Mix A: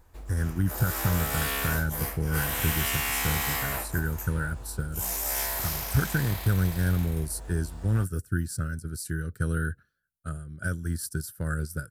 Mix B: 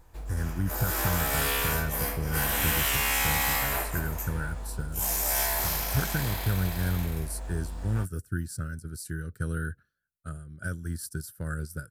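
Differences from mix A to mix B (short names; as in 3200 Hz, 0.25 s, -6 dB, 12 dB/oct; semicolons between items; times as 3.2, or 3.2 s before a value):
speech -3.5 dB; reverb: on, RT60 2.0 s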